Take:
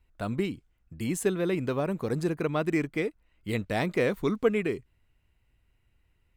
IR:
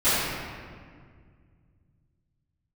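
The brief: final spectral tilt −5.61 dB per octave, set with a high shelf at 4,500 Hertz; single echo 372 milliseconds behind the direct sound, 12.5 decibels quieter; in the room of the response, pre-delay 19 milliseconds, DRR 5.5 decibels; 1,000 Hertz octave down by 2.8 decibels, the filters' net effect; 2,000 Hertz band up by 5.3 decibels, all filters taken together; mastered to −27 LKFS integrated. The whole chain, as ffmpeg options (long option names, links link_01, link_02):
-filter_complex "[0:a]equalizer=frequency=1000:width_type=o:gain=-6.5,equalizer=frequency=2000:width_type=o:gain=8.5,highshelf=frequency=4500:gain=-4,aecho=1:1:372:0.237,asplit=2[link_01][link_02];[1:a]atrim=start_sample=2205,adelay=19[link_03];[link_02][link_03]afir=irnorm=-1:irlink=0,volume=-24dB[link_04];[link_01][link_04]amix=inputs=2:normalize=0,volume=1dB"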